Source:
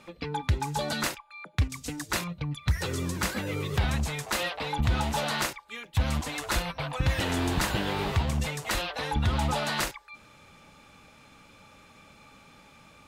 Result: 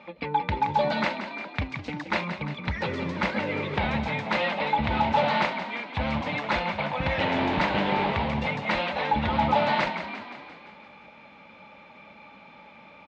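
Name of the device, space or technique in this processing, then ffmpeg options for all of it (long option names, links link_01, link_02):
frequency-shifting delay pedal into a guitar cabinet: -filter_complex "[0:a]asplit=8[link_01][link_02][link_03][link_04][link_05][link_06][link_07][link_08];[link_02]adelay=173,afreqshift=33,volume=-10dB[link_09];[link_03]adelay=346,afreqshift=66,volume=-14.4dB[link_10];[link_04]adelay=519,afreqshift=99,volume=-18.9dB[link_11];[link_05]adelay=692,afreqshift=132,volume=-23.3dB[link_12];[link_06]adelay=865,afreqshift=165,volume=-27.7dB[link_13];[link_07]adelay=1038,afreqshift=198,volume=-32.2dB[link_14];[link_08]adelay=1211,afreqshift=231,volume=-36.6dB[link_15];[link_01][link_09][link_10][link_11][link_12][link_13][link_14][link_15]amix=inputs=8:normalize=0,highpass=78,equalizer=frequency=83:width_type=q:width=4:gain=-5,equalizer=frequency=120:width_type=q:width=4:gain=-8,equalizer=frequency=210:width_type=q:width=4:gain=6,equalizer=frequency=580:width_type=q:width=4:gain=8,equalizer=frequency=880:width_type=q:width=4:gain=9,equalizer=frequency=2200:width_type=q:width=4:gain=8,lowpass=frequency=4000:width=0.5412,lowpass=frequency=4000:width=1.3066"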